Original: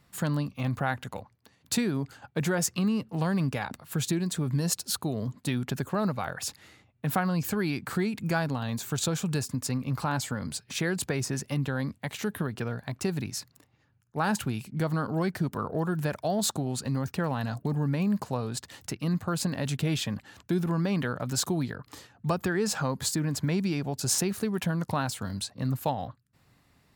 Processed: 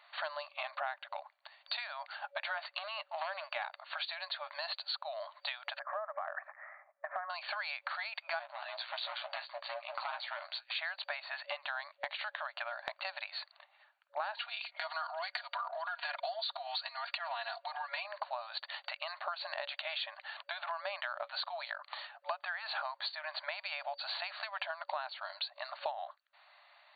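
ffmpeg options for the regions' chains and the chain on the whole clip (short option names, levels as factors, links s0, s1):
-filter_complex "[0:a]asettb=1/sr,asplit=3[s0][s1][s2];[s0]atrim=end=2.584[s3];[s1]atrim=start=2.58:end=3.44,asetpts=PTS-STARTPTS,afade=t=in:d=0.004:c=qsin,afade=t=out:st=0.856:d=0.004:c=qsin,highshelf=f=8500:g=2,aeval=exprs='clip(val(0),-1,0.0631)':c=same[s4];[s2]atrim=start=3.436[s5];[s3][s4]acrossfade=d=0.004:c1=hsin:c2=qsin[s6];[s6][s5]acrossfade=d=0.004:c1=qsin:c2=hsin,asettb=1/sr,asplit=3[s7][s8][s9];[s7]atrim=end=5.794[s10];[s8]atrim=start=5.79:end=7.3,asetpts=PTS-STARTPTS,afade=t=in:d=0.004:c=qsin,afade=t=out:st=1.506:d=0.004:c=qsin,asuperstop=centerf=3800:order=12:qfactor=0.79,acompressor=threshold=0.0224:ratio=3:attack=3.2:release=140:knee=1:detection=peak,aecho=1:1:1.7:0.34,atrim=end_sample=66591[s11];[s9]atrim=start=7.296[s12];[s10][s11]acrossfade=d=0.004:c1=hsin:c2=qsin[s13];[s13][s12]acrossfade=d=0.004:c1=qsin:c2=hsin,asettb=1/sr,asplit=3[s14][s15][s16];[s14]atrim=end=8.394[s17];[s15]atrim=start=8.39:end=10.73,asetpts=PTS-STARTPTS,afade=t=in:d=0.004:c=qsin,afade=t=out:st=2.336:d=0.004:c=qsin,asoftclip=type=hard:threshold=0.0355,aeval=exprs='val(0)*sin(2*PI*60*n/s)':c=same,asplit=2[s18][s19];[s19]adelay=14,volume=0.398[s20];[s18][s20]amix=inputs=2:normalize=0,atrim=end_sample=103194[s21];[s16]atrim=start=10.726[s22];[s17][s21]acrossfade=d=0.004:c1=hsin:c2=qsin[s23];[s23][s22]acrossfade=d=0.004:c1=qsin:c2=hsin,asettb=1/sr,asplit=3[s24][s25][s26];[s24]atrim=end=14.374[s27];[s25]atrim=start=14.37:end=18.05,asetpts=PTS-STARTPTS,afade=t=in:d=0.004:c=qsin,afade=t=out:st=3.676:d=0.004:c=qsin,aecho=1:1:4.2:0.94,atrim=end_sample=162288,acompressor=threshold=0.0316:ratio=6:attack=3.2:release=140:knee=1:detection=peak,highshelf=f=2000:g=10.5[s28];[s26]atrim=start=18.046[s29];[s27][s28]acrossfade=d=0.004:c1=hsin:c2=qsin[s30];[s30][s29]acrossfade=d=0.004:c1=qsin:c2=hsin,afftfilt=real='re*between(b*sr/4096,570,4600)':imag='im*between(b*sr/4096,570,4600)':win_size=4096:overlap=0.75,acompressor=threshold=0.00631:ratio=5,volume=2.37"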